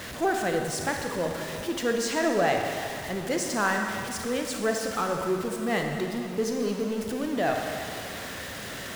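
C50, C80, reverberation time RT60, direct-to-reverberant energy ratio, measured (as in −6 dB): 3.0 dB, 4.0 dB, 2.4 s, 2.0 dB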